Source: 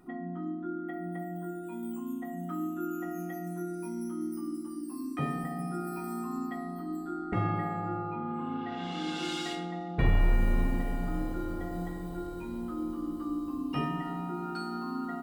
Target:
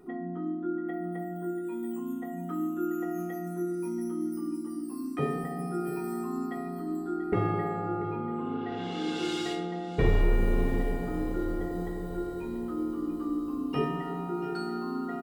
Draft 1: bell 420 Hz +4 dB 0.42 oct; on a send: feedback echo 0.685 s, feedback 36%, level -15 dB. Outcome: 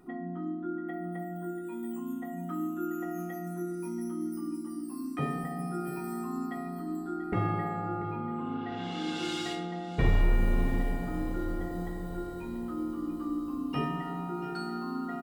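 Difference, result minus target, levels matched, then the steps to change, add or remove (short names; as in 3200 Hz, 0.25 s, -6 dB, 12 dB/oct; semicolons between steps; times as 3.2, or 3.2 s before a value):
500 Hz band -3.5 dB
change: bell 420 Hz +14 dB 0.42 oct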